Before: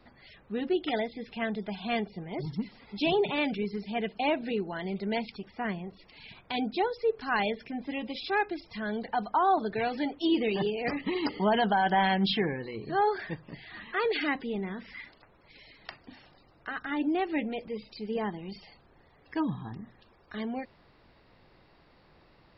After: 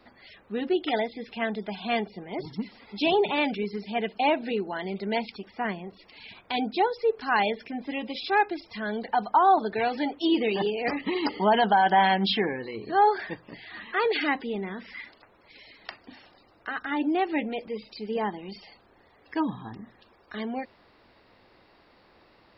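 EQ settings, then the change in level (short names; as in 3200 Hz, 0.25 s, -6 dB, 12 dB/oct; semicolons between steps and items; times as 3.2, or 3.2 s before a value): dynamic EQ 860 Hz, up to +4 dB, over -43 dBFS, Q 4.1; low shelf 95 Hz -11 dB; bell 150 Hz -12.5 dB 0.25 oct; +3.5 dB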